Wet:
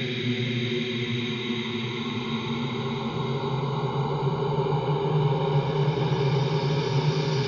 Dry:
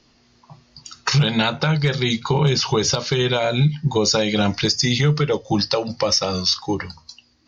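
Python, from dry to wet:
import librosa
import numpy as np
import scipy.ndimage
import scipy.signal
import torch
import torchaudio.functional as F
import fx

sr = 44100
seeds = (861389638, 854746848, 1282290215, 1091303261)

y = scipy.signal.sosfilt(scipy.signal.butter(2, 3900.0, 'lowpass', fs=sr, output='sos'), x)
y = fx.paulstretch(y, sr, seeds[0], factor=16.0, window_s=0.5, from_s=2.04)
y = y * librosa.db_to_amplitude(-6.5)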